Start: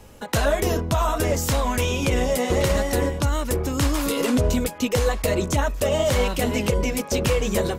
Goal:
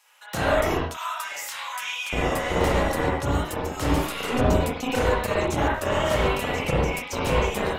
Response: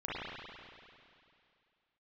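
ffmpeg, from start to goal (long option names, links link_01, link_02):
-filter_complex "[0:a]asplit=3[link_01][link_02][link_03];[link_01]afade=type=out:start_time=0.82:duration=0.02[link_04];[link_02]highpass=610,afade=type=in:start_time=0.82:duration=0.02,afade=type=out:start_time=2.11:duration=0.02[link_05];[link_03]afade=type=in:start_time=2.11:duration=0.02[link_06];[link_04][link_05][link_06]amix=inputs=3:normalize=0,acrossover=split=1000[link_07][link_08];[link_07]acrusher=bits=2:mix=0:aa=0.5[link_09];[link_08]asoftclip=type=hard:threshold=-21.5dB[link_10];[link_09][link_10]amix=inputs=2:normalize=0[link_11];[1:a]atrim=start_sample=2205,atrim=end_sample=6615[link_12];[link_11][link_12]afir=irnorm=-1:irlink=0,volume=-2dB"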